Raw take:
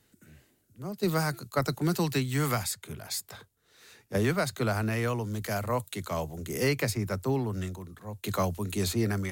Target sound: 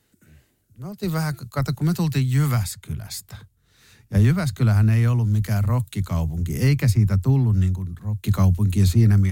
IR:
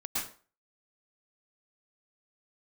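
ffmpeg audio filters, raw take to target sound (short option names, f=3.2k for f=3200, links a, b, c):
-af "acontrast=62,asubboost=boost=9:cutoff=160,volume=-5.5dB"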